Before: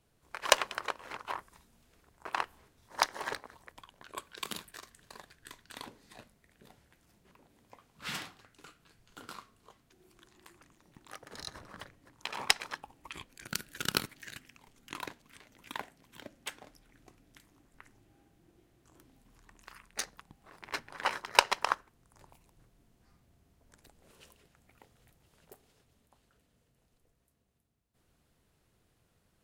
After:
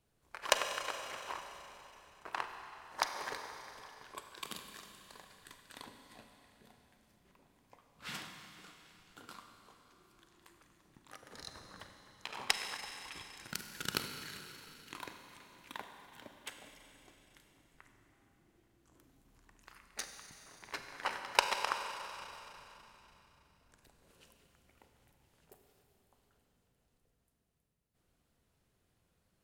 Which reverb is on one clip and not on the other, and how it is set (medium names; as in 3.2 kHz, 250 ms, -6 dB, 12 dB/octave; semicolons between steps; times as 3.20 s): Schroeder reverb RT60 3.4 s, combs from 32 ms, DRR 5 dB; trim -5.5 dB